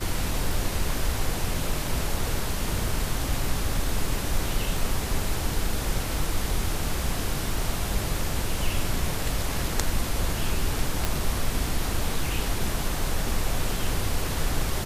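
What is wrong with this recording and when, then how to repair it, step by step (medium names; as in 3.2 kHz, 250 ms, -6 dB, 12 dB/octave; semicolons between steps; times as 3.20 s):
11.05 s: pop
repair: de-click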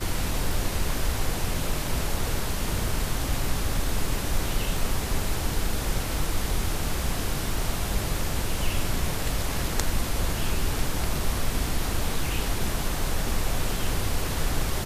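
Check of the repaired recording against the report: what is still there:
nothing left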